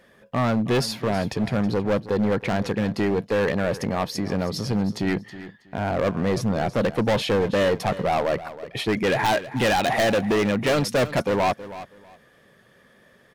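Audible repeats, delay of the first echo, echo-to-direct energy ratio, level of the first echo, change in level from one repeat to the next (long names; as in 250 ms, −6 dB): 2, 322 ms, −15.0 dB, −15.0 dB, −13.5 dB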